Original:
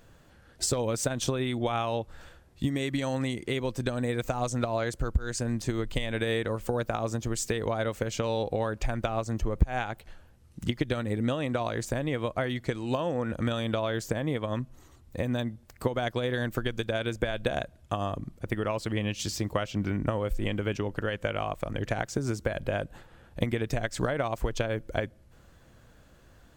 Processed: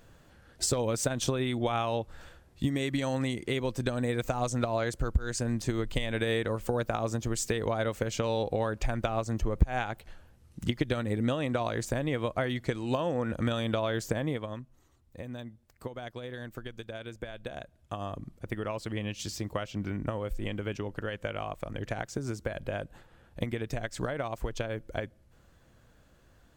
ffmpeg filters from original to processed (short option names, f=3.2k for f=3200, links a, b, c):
-af "volume=6dB,afade=t=out:st=14.21:d=0.4:silence=0.298538,afade=t=in:st=17.54:d=0.66:silence=0.473151"